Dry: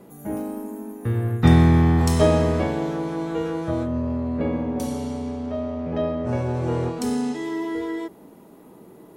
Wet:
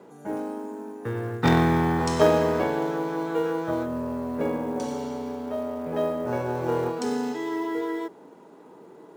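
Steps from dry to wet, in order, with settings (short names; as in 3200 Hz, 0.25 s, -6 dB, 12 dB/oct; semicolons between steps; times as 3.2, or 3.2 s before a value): added harmonics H 3 -39 dB, 4 -16 dB, 6 -16 dB, 8 -30 dB, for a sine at -2 dBFS; speaker cabinet 170–7800 Hz, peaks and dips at 210 Hz -5 dB, 450 Hz +5 dB, 920 Hz +6 dB, 1500 Hz +6 dB; short-mantissa float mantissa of 4-bit; gain -2 dB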